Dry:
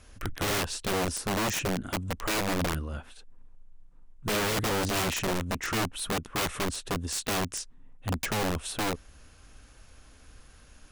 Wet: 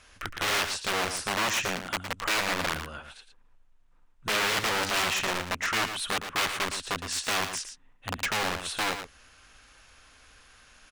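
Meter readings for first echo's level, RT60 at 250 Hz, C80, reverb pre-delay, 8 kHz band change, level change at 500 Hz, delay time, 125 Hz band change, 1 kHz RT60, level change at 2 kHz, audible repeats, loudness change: -9.0 dB, none, none, none, +0.5 dB, -2.5 dB, 0.113 s, -8.5 dB, none, +5.5 dB, 1, +2.0 dB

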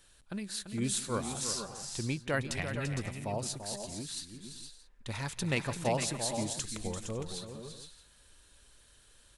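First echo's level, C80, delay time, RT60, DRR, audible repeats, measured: -19.5 dB, none, 0.173 s, none, none, 5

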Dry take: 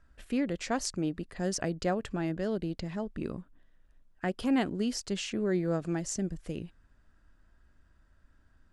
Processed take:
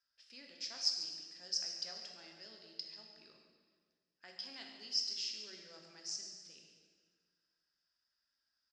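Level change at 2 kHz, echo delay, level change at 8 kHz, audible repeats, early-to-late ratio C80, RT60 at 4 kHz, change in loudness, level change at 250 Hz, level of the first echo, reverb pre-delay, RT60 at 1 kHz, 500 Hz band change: -15.0 dB, 0.142 s, -6.0 dB, 1, 4.5 dB, 1.4 s, -7.0 dB, -32.0 dB, -12.5 dB, 5 ms, 1.6 s, -27.0 dB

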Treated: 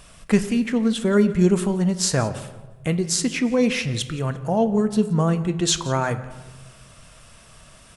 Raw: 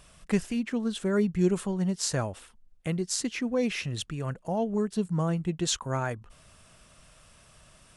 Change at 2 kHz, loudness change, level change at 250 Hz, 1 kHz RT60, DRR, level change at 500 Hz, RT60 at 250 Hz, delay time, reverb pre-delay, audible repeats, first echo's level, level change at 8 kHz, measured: +8.0 dB, +8.0 dB, +8.0 dB, 1.1 s, 9.5 dB, +7.5 dB, 1.4 s, 0.174 s, 4 ms, 2, -21.0 dB, +8.0 dB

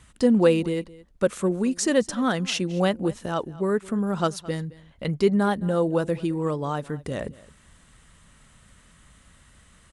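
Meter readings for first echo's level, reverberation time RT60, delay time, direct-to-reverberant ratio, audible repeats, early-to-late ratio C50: -20.5 dB, none, 0.217 s, none, 1, none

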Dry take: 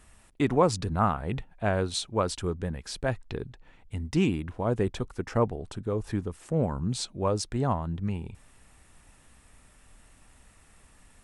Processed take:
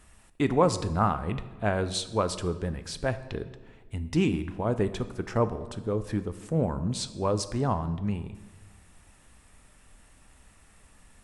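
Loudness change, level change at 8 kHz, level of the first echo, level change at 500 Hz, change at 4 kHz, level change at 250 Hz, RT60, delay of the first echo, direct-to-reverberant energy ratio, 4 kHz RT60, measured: +0.5 dB, 0.0 dB, none, +0.5 dB, 0.0 dB, +0.5 dB, 1.2 s, none, 11.0 dB, 0.90 s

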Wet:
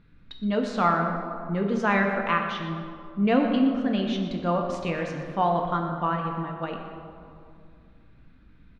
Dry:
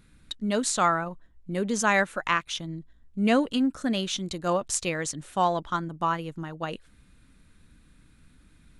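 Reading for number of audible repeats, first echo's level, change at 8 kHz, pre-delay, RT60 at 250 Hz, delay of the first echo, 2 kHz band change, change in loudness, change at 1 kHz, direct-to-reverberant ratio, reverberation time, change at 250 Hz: 1, -14.0 dB, under -20 dB, 4 ms, 2.5 s, 0.121 s, -0.5 dB, +1.0 dB, +1.5 dB, 1.5 dB, 2.4 s, +3.0 dB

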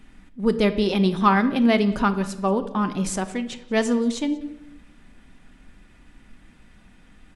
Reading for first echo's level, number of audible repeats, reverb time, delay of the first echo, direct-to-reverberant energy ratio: -23.0 dB, 1, 0.90 s, 0.183 s, 8.0 dB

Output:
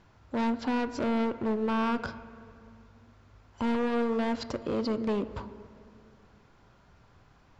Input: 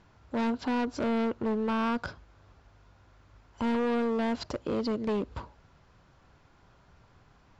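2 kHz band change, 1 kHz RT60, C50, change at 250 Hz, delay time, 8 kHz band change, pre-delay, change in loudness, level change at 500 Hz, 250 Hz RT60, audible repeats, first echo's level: +0.5 dB, 2.2 s, 13.5 dB, +0.5 dB, none, n/a, 8 ms, 0.0 dB, 0.0 dB, 2.8 s, none, none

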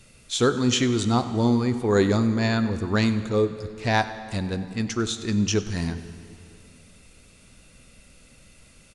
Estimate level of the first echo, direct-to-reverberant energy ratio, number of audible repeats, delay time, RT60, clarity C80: -18.5 dB, 10.5 dB, 2, 96 ms, 2.7 s, 12.0 dB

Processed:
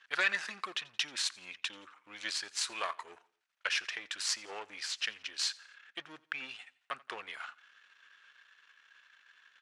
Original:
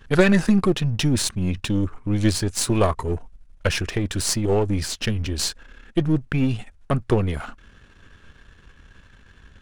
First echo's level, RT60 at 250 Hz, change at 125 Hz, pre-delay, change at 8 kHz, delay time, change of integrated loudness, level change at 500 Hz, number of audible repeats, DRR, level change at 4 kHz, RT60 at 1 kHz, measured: -22.5 dB, none, under -40 dB, none, -11.5 dB, 86 ms, -13.5 dB, -25.0 dB, 2, none, -6.0 dB, none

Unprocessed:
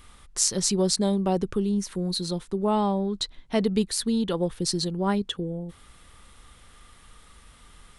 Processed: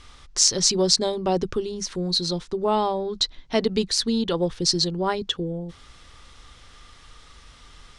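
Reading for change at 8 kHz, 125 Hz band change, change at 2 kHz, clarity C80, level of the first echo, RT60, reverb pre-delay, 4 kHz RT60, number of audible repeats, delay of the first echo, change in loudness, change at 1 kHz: +4.0 dB, -1.5 dB, +4.0 dB, none, none, none, none, none, none, none, +3.0 dB, +3.0 dB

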